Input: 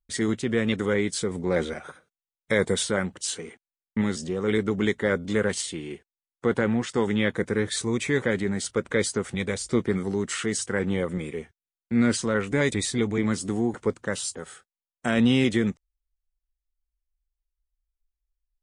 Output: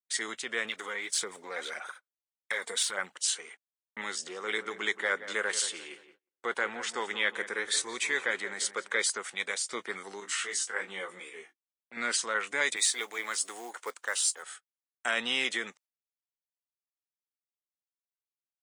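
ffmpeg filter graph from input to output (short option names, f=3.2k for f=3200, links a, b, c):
-filter_complex "[0:a]asettb=1/sr,asplit=3[a][b][c];[a]atrim=end=0.654[d];[b]atrim=start=0.65:end=3.12,asetpts=PTS-STARTPTS,afade=t=in:d=0.004:c=qsin,afade=t=out:st=2.466:d=0.004:c=qsin,acompressor=threshold=-26dB:ratio=3:attack=3.2:release=140:knee=1:detection=peak,aphaser=in_gain=1:out_gain=1:delay=4.4:decay=0.5:speed=1.7:type=sinusoidal[e];[c]atrim=start=3.116[f];[d][e]acrossfade=d=0.004:c1=hsin:c2=qsin[g];[g][f]acrossfade=d=0.004:c1=qsin:c2=hsin,asettb=1/sr,asplit=3[h][i][j];[h]atrim=end=4.094[k];[i]atrim=start=4.09:end=9.1,asetpts=PTS-STARTPTS,afade=t=in:d=0.004:c=qsin,afade=t=out:st=5.006:d=0.004:c=qsin,equalizer=f=370:t=o:w=0.31:g=2.5,asplit=2[l][m];[m]adelay=175,lowpass=f=2k:p=1,volume=-12dB,asplit=2[n][o];[o]adelay=175,lowpass=f=2k:p=1,volume=0.47,asplit=2[p][q];[q]adelay=175,lowpass=f=2k:p=1,volume=0.47,asplit=2[r][s];[s]adelay=175,lowpass=f=2k:p=1,volume=0.47,asplit=2[t][u];[u]adelay=175,lowpass=f=2k:p=1,volume=0.47[v];[l][n][p][r][t][v]amix=inputs=6:normalize=0,atrim=end_sample=220941[w];[j]atrim=start=9.096[x];[k][w]acrossfade=d=0.004:c1=hsin:c2=qsin[y];[y][x]acrossfade=d=0.004:c1=qsin:c2=hsin,asettb=1/sr,asplit=3[z][aa][ab];[z]atrim=end=10.204[ac];[aa]atrim=start=10.2:end=11.97,asetpts=PTS-STARTPTS,afade=t=in:d=0.004:c=qsin,afade=t=out:st=1.766:d=0.004:c=qsin,bandreject=f=50:t=h:w=6,bandreject=f=100:t=h:w=6,bandreject=f=150:t=h:w=6,bandreject=f=200:t=h:w=6,bandreject=f=250:t=h:w=6,bandreject=f=300:t=h:w=6,bandreject=f=350:t=h:w=6,flanger=delay=15.5:depth=2.1:speed=2.8,asplit=2[ad][ae];[ae]adelay=20,volume=-7dB[af];[ad][af]amix=inputs=2:normalize=0,atrim=end_sample=78057[ag];[ab]atrim=start=11.966[ah];[ac][ag]acrossfade=d=0.004:c1=hsin:c2=qsin[ai];[ai][ah]acrossfade=d=0.004:c1=qsin:c2=hsin,asettb=1/sr,asplit=3[aj][ak][al];[aj]atrim=end=12.764[am];[ak]atrim=start=12.76:end=14.43,asetpts=PTS-STARTPTS,afade=t=in:d=0.004:c=qsin,afade=t=out:st=1.666:d=0.004:c=qsin,highpass=360,highshelf=f=7.6k:g=6,acrusher=bits=7:mode=log:mix=0:aa=0.000001[an];[al]atrim=start=14.426[ao];[am][an]acrossfade=d=0.004:c1=hsin:c2=qsin[ap];[ap][ao]acrossfade=d=0.004:c1=qsin:c2=hsin,agate=range=-29dB:threshold=-45dB:ratio=16:detection=peak,highpass=990,volume=1dB"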